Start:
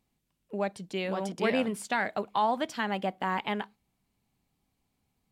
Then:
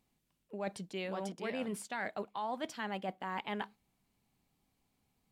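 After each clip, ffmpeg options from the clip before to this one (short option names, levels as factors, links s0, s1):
-af "areverse,acompressor=threshold=0.0178:ratio=6,areverse,equalizer=f=63:t=o:w=2.4:g=-3"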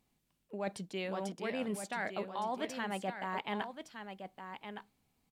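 -af "aecho=1:1:1164:0.376,volume=1.12"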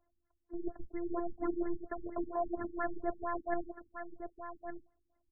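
-af "highpass=f=150:t=q:w=0.5412,highpass=f=150:t=q:w=1.307,lowpass=f=3100:t=q:w=0.5176,lowpass=f=3100:t=q:w=0.7071,lowpass=f=3100:t=q:w=1.932,afreqshift=-140,afftfilt=real='hypot(re,im)*cos(PI*b)':imag='0':win_size=512:overlap=0.75,afftfilt=real='re*lt(b*sr/1024,320*pow(2100/320,0.5+0.5*sin(2*PI*4.3*pts/sr)))':imag='im*lt(b*sr/1024,320*pow(2100/320,0.5+0.5*sin(2*PI*4.3*pts/sr)))':win_size=1024:overlap=0.75,volume=2.24"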